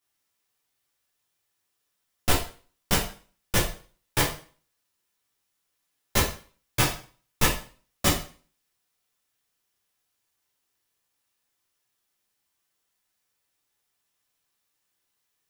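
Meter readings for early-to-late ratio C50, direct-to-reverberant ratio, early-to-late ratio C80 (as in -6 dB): 6.0 dB, -6.5 dB, 11.0 dB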